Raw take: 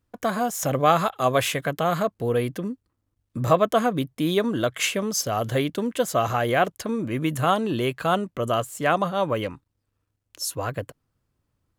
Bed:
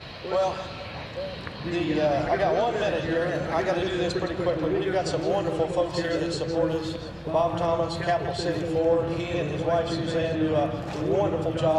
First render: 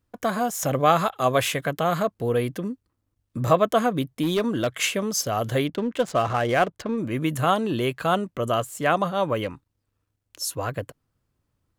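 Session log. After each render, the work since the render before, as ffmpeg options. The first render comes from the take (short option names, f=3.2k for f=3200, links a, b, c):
-filter_complex "[0:a]asettb=1/sr,asplit=3[a][b][c];[a]atrim=end=4.234[d];[b]atrim=start=4.23:end=4.75,asetpts=PTS-STARTPTS,afade=t=in:d=0.004:c=qsin,afade=t=out:st=0.516:d=0.004:c=qsin,asoftclip=type=hard:threshold=-18dB[e];[c]atrim=start=4.746[f];[d][e]acrossfade=d=0.004:c1=hsin:c2=qsin[g];[g][f]acrossfade=d=0.004:c1=qsin:c2=hsin,asettb=1/sr,asplit=3[h][i][j];[h]atrim=end=5.674[k];[i]atrim=start=5.67:end=6.98,asetpts=PTS-STARTPTS,afade=t=in:d=0.004:c=qsin,afade=t=out:st=1.306:d=0.004:c=qsin,adynamicsmooth=sensitivity=7:basefreq=1.8k[l];[j]atrim=start=6.976[m];[k][l]acrossfade=d=0.004:c1=hsin:c2=qsin[n];[n][m]acrossfade=d=0.004:c1=qsin:c2=hsin"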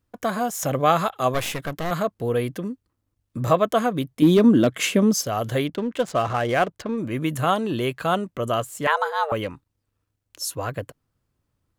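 -filter_complex "[0:a]asettb=1/sr,asplit=3[a][b][c];[a]atrim=end=1.344[d];[b]atrim=start=1.34:end=1.91,asetpts=PTS-STARTPTS,afade=t=in:d=0.004:c=qsin,afade=t=out:st=0.566:d=0.004:c=qsin,aeval=exprs='clip(val(0),-1,0.0211)':c=same[e];[c]atrim=start=1.906[f];[d][e]acrossfade=d=0.004:c1=hsin:c2=qsin[g];[g][f]acrossfade=d=0.004:c1=qsin:c2=hsin,asettb=1/sr,asplit=3[h][i][j];[h]atrim=end=4.224[k];[i]atrim=start=4.22:end=5.15,asetpts=PTS-STARTPTS,afade=t=in:d=0.004:c=qsin,afade=t=out:st=0.926:d=0.004:c=qsin,equalizer=f=240:w=0.79:g=12[l];[j]atrim=start=5.146[m];[k][l]acrossfade=d=0.004:c1=hsin:c2=qsin[n];[n][m]acrossfade=d=0.004:c1=qsin:c2=hsin,asettb=1/sr,asplit=3[o][p][q];[o]atrim=end=8.874[r];[p]atrim=start=8.87:end=9.32,asetpts=PTS-STARTPTS,afade=t=in:d=0.004:c=qsin,afade=t=out:st=0.446:d=0.004:c=qsin,afreqshift=300[s];[q]atrim=start=9.316[t];[r][s]acrossfade=d=0.004:c1=hsin:c2=qsin[u];[u][t]acrossfade=d=0.004:c1=qsin:c2=hsin"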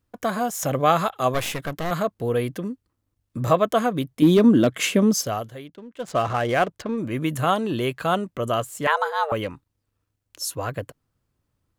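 -filter_complex "[0:a]asplit=3[a][b][c];[a]atrim=end=5.49,asetpts=PTS-STARTPTS,afade=t=out:st=5.32:d=0.17:silence=0.177828[d];[b]atrim=start=5.49:end=5.97,asetpts=PTS-STARTPTS,volume=-15dB[e];[c]atrim=start=5.97,asetpts=PTS-STARTPTS,afade=t=in:d=0.17:silence=0.177828[f];[d][e][f]concat=n=3:v=0:a=1"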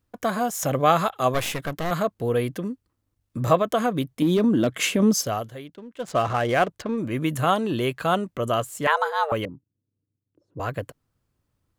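-filter_complex "[0:a]asettb=1/sr,asplit=3[a][b][c];[a]atrim=end=3.594[d];[b]atrim=start=3.59:end=5,asetpts=PTS-STARTPTS,afade=t=in:d=0.004:c=qsin,afade=t=out:st=1.406:d=0.004:c=qsin,acompressor=threshold=-16dB:ratio=6:attack=3.2:release=140:knee=1:detection=peak[e];[c]atrim=start=4.996[f];[d][e]acrossfade=d=0.004:c1=hsin:c2=qsin[g];[g][f]acrossfade=d=0.004:c1=qsin:c2=hsin,asettb=1/sr,asplit=3[h][i][j];[h]atrim=end=9.454[k];[i]atrim=start=9.45:end=10.6,asetpts=PTS-STARTPTS,afade=t=in:d=0.004:c=qsin,afade=t=out:st=1.146:d=0.004:c=qsin,asuperpass=centerf=200:order=4:qfactor=0.75[l];[j]atrim=start=10.596[m];[k][l]acrossfade=d=0.004:c1=hsin:c2=qsin[n];[n][m]acrossfade=d=0.004:c1=qsin:c2=hsin"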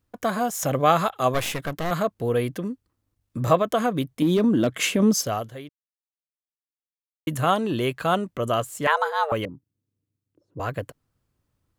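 -filter_complex "[0:a]asplit=3[a][b][c];[a]atrim=end=5.69,asetpts=PTS-STARTPTS,afade=t=out:st=5.686:d=0.004:c=hsin[d];[b]atrim=start=5.69:end=7.27,asetpts=PTS-STARTPTS,volume=0[e];[c]atrim=start=7.27,asetpts=PTS-STARTPTS,afade=t=in:d=0.004:c=hsin[f];[d][e][f]concat=n=3:v=0:a=1"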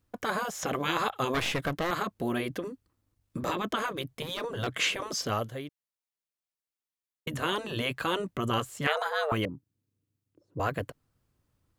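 -filter_complex "[0:a]afftfilt=real='re*lt(hypot(re,im),0.316)':imag='im*lt(hypot(re,im),0.316)':win_size=1024:overlap=0.75,acrossover=split=5700[a][b];[b]acompressor=threshold=-47dB:ratio=4:attack=1:release=60[c];[a][c]amix=inputs=2:normalize=0"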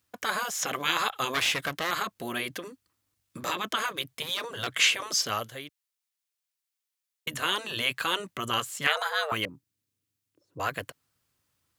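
-af "highpass=64,tiltshelf=f=970:g=-7.5"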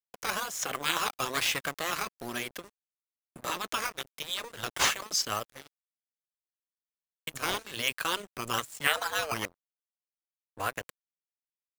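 -filter_complex "[0:a]acrossover=split=550|3000[a][b][c];[b]acrusher=samples=8:mix=1:aa=0.000001:lfo=1:lforange=8:lforate=1.1[d];[a][d][c]amix=inputs=3:normalize=0,aeval=exprs='sgn(val(0))*max(abs(val(0))-0.01,0)':c=same"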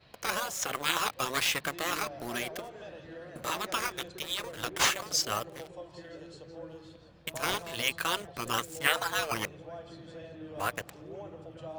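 -filter_complex "[1:a]volume=-20dB[a];[0:a][a]amix=inputs=2:normalize=0"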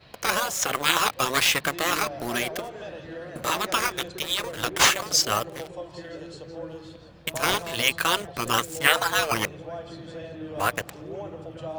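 -af "volume=7.5dB,alimiter=limit=-3dB:level=0:latency=1"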